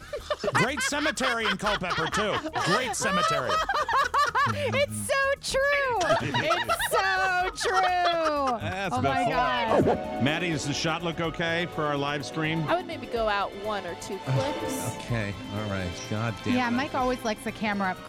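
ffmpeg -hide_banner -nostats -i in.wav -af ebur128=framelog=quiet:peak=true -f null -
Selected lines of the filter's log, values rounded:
Integrated loudness:
  I:         -26.3 LUFS
  Threshold: -36.3 LUFS
Loudness range:
  LRA:         4.9 LU
  Threshold: -46.2 LUFS
  LRA low:   -29.5 LUFS
  LRA high:  -24.7 LUFS
True peak:
  Peak:      -12.1 dBFS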